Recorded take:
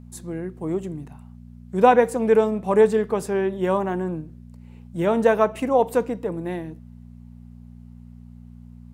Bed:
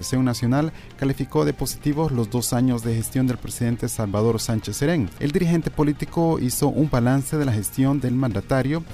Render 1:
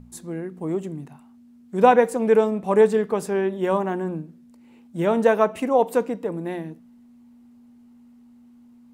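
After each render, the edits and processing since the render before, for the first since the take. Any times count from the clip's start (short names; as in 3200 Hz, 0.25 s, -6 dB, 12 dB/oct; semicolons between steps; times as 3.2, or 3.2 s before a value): de-hum 60 Hz, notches 3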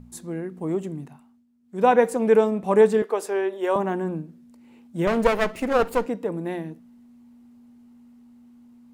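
1.03–2.04 dip -14 dB, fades 0.43 s; 3.02–3.76 HPF 340 Hz 24 dB/oct; 5.07–6.06 minimum comb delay 0.44 ms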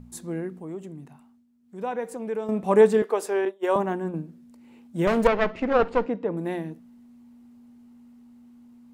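0.57–2.49 compressor 1.5:1, threshold -49 dBFS; 3.45–4.14 expander -24 dBFS; 5.27–6.37 Gaussian blur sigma 1.9 samples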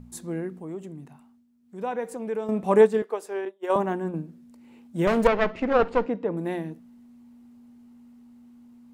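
2.78–3.7 upward expander, over -29 dBFS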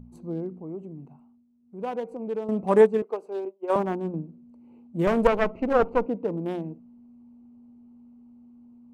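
Wiener smoothing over 25 samples; dynamic EQ 3800 Hz, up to -4 dB, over -45 dBFS, Q 1.3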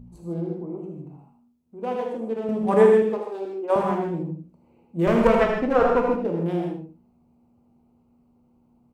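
on a send: echo 78 ms -10 dB; on the sum: non-linear reverb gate 0.18 s flat, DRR 0 dB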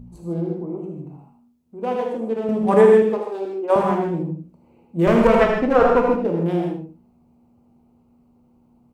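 gain +4 dB; limiter -3 dBFS, peak gain reduction 3 dB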